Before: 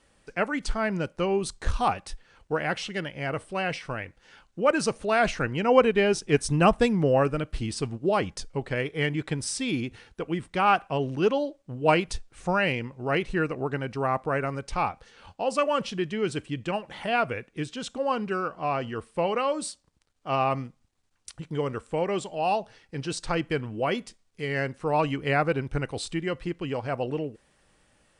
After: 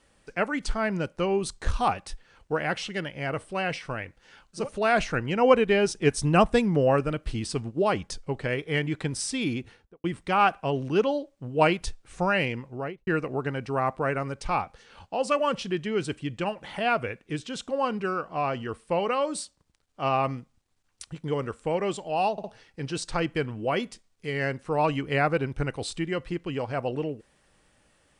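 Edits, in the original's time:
4.61–4.88 cut, crossfade 0.16 s
9.83–10.31 studio fade out
12.9–13.34 studio fade out
22.59 stutter 0.06 s, 3 plays

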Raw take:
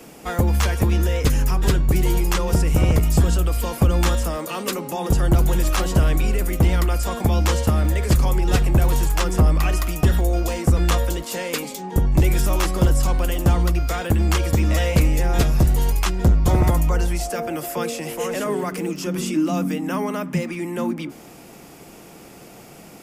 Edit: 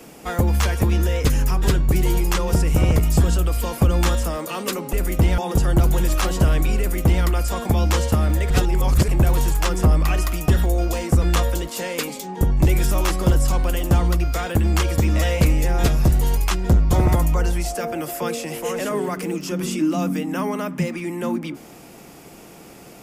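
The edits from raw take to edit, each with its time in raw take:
6.34–6.79 copy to 4.93
8.05–8.63 reverse

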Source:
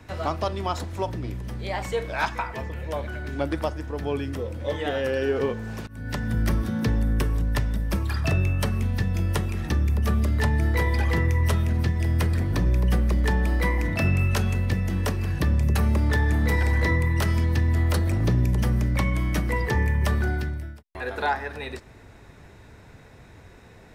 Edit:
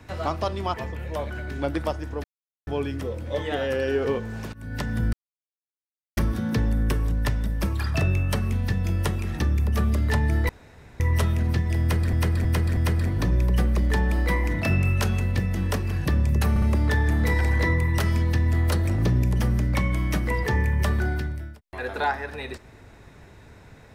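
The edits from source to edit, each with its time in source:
0.74–2.51 cut
4.01 insert silence 0.43 s
6.47 insert silence 1.04 s
10.79–11.3 room tone
12.11–12.43 loop, 4 plays
15.84 stutter 0.06 s, 3 plays

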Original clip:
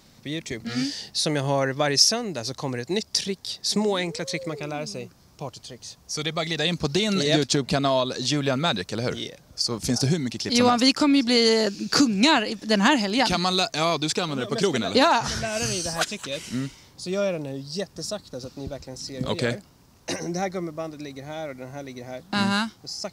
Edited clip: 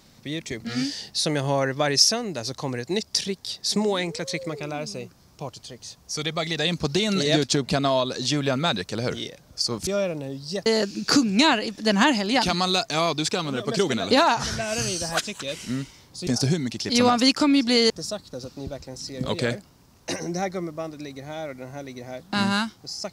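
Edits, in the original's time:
9.87–11.5 swap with 17.11–17.9

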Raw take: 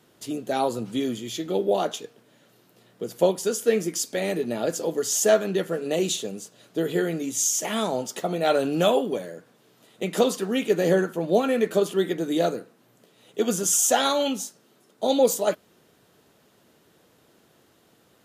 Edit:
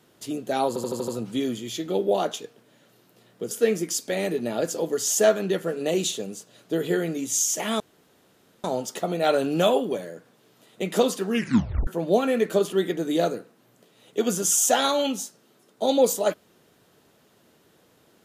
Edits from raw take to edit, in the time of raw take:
0.68 stutter 0.08 s, 6 plays
3.11–3.56 cut
7.85 insert room tone 0.84 s
10.51 tape stop 0.57 s

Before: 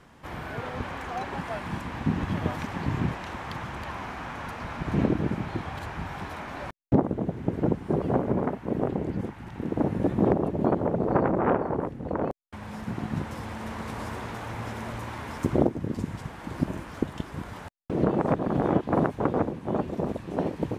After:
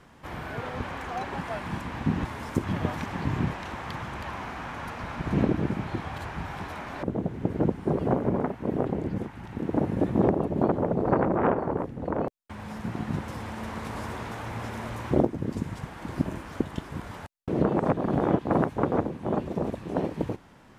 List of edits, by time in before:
6.64–7.06 cut
15.13–15.52 move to 2.25

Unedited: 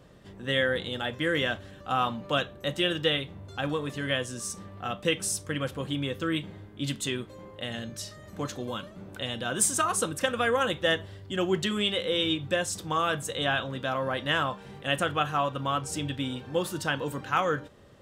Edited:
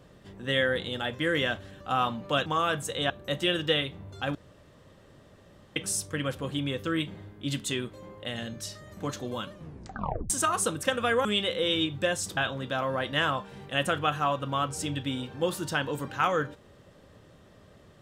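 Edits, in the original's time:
3.71–5.12 room tone
8.88 tape stop 0.78 s
10.61–11.74 cut
12.86–13.5 move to 2.46

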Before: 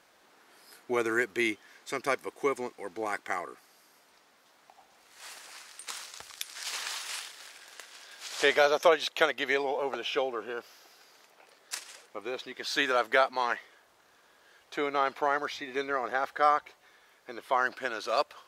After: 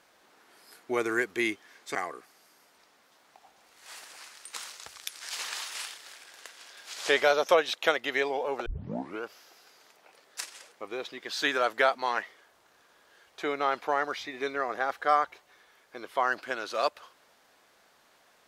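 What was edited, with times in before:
1.95–3.29 cut
10 tape start 0.57 s

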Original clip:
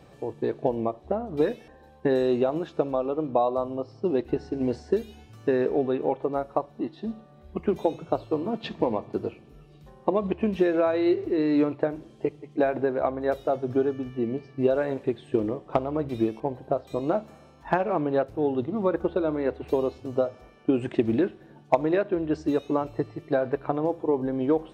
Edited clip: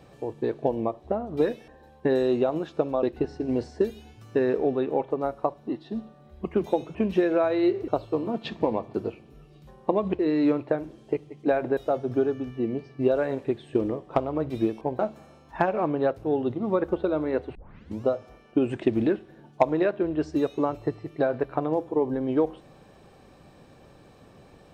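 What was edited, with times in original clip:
3.03–4.15 cut
10.38–11.31 move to 8.07
12.89–13.36 cut
16.58–17.11 cut
19.67 tape start 0.50 s

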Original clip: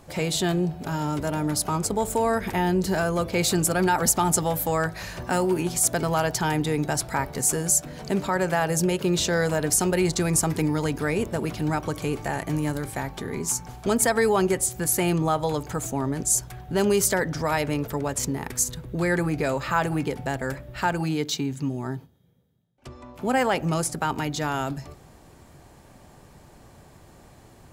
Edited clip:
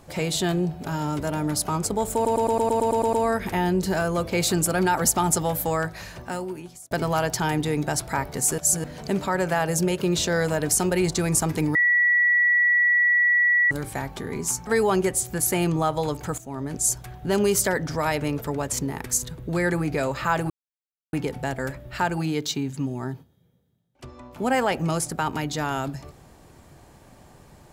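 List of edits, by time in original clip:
2.14 stutter 0.11 s, 10 plays
4.69–5.92 fade out
7.59–7.85 reverse
10.76–12.72 bleep 1940 Hz -16 dBFS
13.68–14.13 cut
15.84–16.49 fade in equal-power, from -16 dB
19.96 insert silence 0.63 s

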